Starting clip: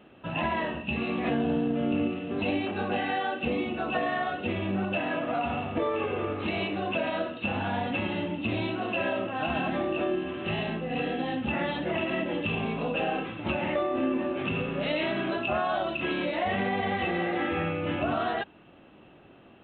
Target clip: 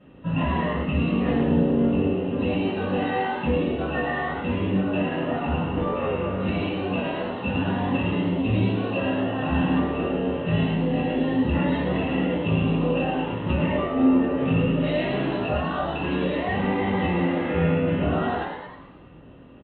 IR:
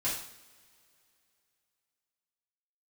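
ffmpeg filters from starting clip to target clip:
-filter_complex "[0:a]aemphasis=mode=reproduction:type=bsi,asplit=7[s0][s1][s2][s3][s4][s5][s6];[s1]adelay=106,afreqshift=91,volume=0.501[s7];[s2]adelay=212,afreqshift=182,volume=0.245[s8];[s3]adelay=318,afreqshift=273,volume=0.12[s9];[s4]adelay=424,afreqshift=364,volume=0.0589[s10];[s5]adelay=530,afreqshift=455,volume=0.0288[s11];[s6]adelay=636,afreqshift=546,volume=0.0141[s12];[s0][s7][s8][s9][s10][s11][s12]amix=inputs=7:normalize=0[s13];[1:a]atrim=start_sample=2205,asetrate=79380,aresample=44100[s14];[s13][s14]afir=irnorm=-1:irlink=0"

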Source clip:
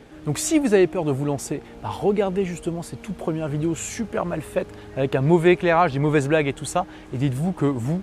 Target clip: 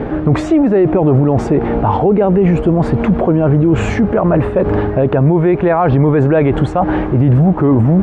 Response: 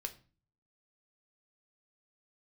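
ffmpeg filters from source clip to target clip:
-af "areverse,acompressor=threshold=0.0447:ratio=12,areverse,lowpass=1200,alimiter=level_in=33.5:limit=0.891:release=50:level=0:latency=1,volume=0.668"

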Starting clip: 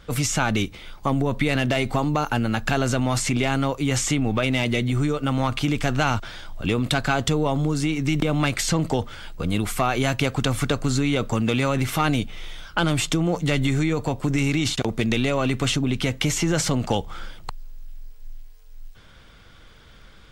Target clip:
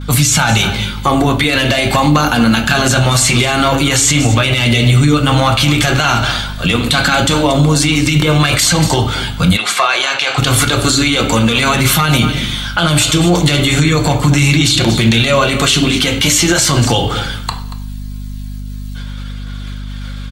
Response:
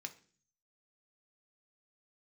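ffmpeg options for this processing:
-filter_complex "[0:a]flanger=delay=0.8:depth=6.5:regen=-56:speed=0.11:shape=triangular,agate=range=0.0224:threshold=0.00447:ratio=3:detection=peak,aphaser=in_gain=1:out_gain=1:delay=3:decay=0.25:speed=0.41:type=triangular,highshelf=f=3100:g=11,aecho=1:1:233:0.133[s0];[1:a]atrim=start_sample=2205,asetrate=28224,aresample=44100[s1];[s0][s1]afir=irnorm=-1:irlink=0,aeval=exprs='val(0)+0.00794*(sin(2*PI*50*n/s)+sin(2*PI*2*50*n/s)/2+sin(2*PI*3*50*n/s)/3+sin(2*PI*4*50*n/s)/4+sin(2*PI*5*50*n/s)/5)':c=same,asplit=3[s2][s3][s4];[s2]afade=t=out:st=9.56:d=0.02[s5];[s3]highpass=700,lowpass=5500,afade=t=in:st=9.56:d=0.02,afade=t=out:st=10.37:d=0.02[s6];[s4]afade=t=in:st=10.37:d=0.02[s7];[s5][s6][s7]amix=inputs=3:normalize=0,alimiter=level_in=10:limit=0.891:release=50:level=0:latency=1,volume=0.891"

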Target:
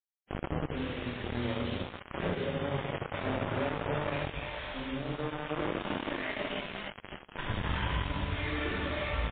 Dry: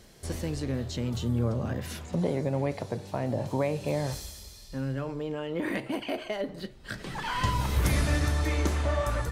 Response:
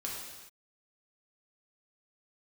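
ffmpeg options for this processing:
-filter_complex "[1:a]atrim=start_sample=2205[s0];[0:a][s0]afir=irnorm=-1:irlink=0,asplit=3[s1][s2][s3];[s1]afade=t=out:st=2.76:d=0.02[s4];[s2]adynamicsmooth=sensitivity=4:basefreq=1100,afade=t=in:st=2.76:d=0.02,afade=t=out:st=3.61:d=0.02[s5];[s3]afade=t=in:st=3.61:d=0.02[s6];[s4][s5][s6]amix=inputs=3:normalize=0,asplit=2[s7][s8];[s8]adelay=20,volume=0.447[s9];[s7][s9]amix=inputs=2:normalize=0,asettb=1/sr,asplit=3[s10][s11][s12];[s10]atrim=end=0.674[s13];[s11]atrim=start=0.67:end=2.17,asetpts=PTS-STARTPTS,afade=t=in:d=0.004:c=qsin,afade=t=out:st=1.496:d=0.004:c=qsin,adynamicequalizer=threshold=0.00631:dfrequency=130:dqfactor=2.3:tfrequency=130:tqfactor=2.3:attack=5:release=100:ratio=0.375:range=3.5:mode=cutabove:tftype=bell[s14];[s12]atrim=start=2.166[s15];[s13][s14]acrossfade=d=0.004:c1=hsin:c2=qsin[s16];[s16][s15]acrossfade=d=0.004:c1=qsin:c2=hsin,acrossover=split=250|750[s17][s18][s19];[s17]adelay=50[s20];[s19]adelay=480[s21];[s20][s18][s21]amix=inputs=3:normalize=0,acompressor=threshold=0.0398:ratio=8,aemphasis=mode=production:type=75fm,acrusher=bits=4:mix=0:aa=0.000001,lowpass=f=2600:p=1" -ar 8000 -c:a libmp3lame -b:a 16k

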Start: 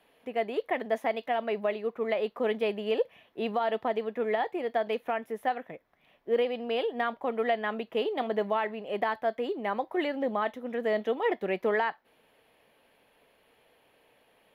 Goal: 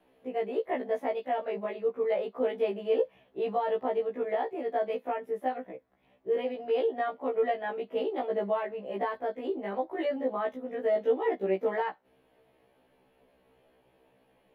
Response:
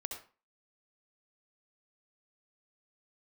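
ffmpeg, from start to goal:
-filter_complex "[0:a]tiltshelf=f=850:g=6.5,acrossover=split=220[s0][s1];[s0]acompressor=threshold=0.00251:ratio=12[s2];[s2][s1]amix=inputs=2:normalize=0,afftfilt=real='re*1.73*eq(mod(b,3),0)':imag='im*1.73*eq(mod(b,3),0)':win_size=2048:overlap=0.75"

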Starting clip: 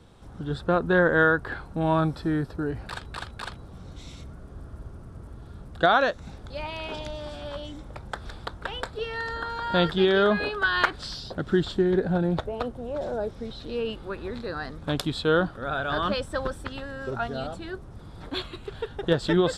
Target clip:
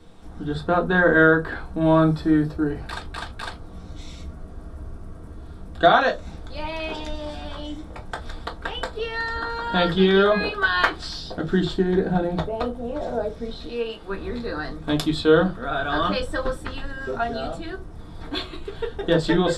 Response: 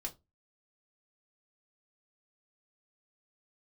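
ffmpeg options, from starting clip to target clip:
-filter_complex "[0:a]asettb=1/sr,asplit=3[s0][s1][s2];[s0]atrim=end=13.664[s3];[s1]atrim=start=13.66:end=14.08,asetpts=PTS-STARTPTS,afade=t=in:d=0.004:c=qsin,afade=t=out:st=0.416:d=0.004:c=qsin,lowshelf=f=320:g=-9.5[s4];[s2]atrim=start=14.076[s5];[s3][s4]acrossfade=d=0.004:c1=hsin:c2=qsin[s6];[s6][s5]acrossfade=d=0.004:c1=qsin:c2=hsin[s7];[1:a]atrim=start_sample=2205[s8];[s7][s8]afir=irnorm=-1:irlink=0,volume=1.68"

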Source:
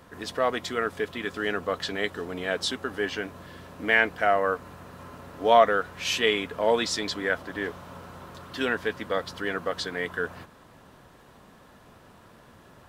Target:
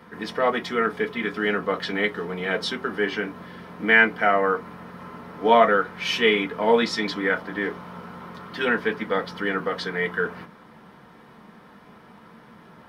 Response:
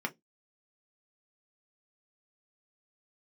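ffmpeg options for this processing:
-filter_complex "[0:a]lowshelf=f=150:g=-3.5[s0];[1:a]atrim=start_sample=2205[s1];[s0][s1]afir=irnorm=-1:irlink=0"

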